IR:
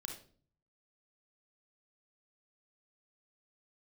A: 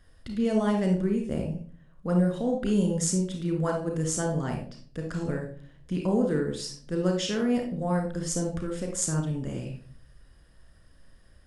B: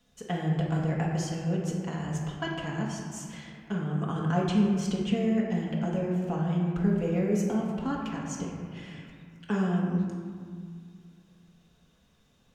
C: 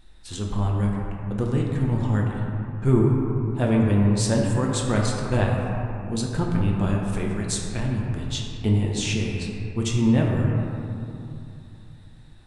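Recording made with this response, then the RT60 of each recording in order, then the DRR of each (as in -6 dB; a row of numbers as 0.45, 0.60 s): A; 0.45, 2.0, 2.8 s; 1.5, -3.5, -2.0 dB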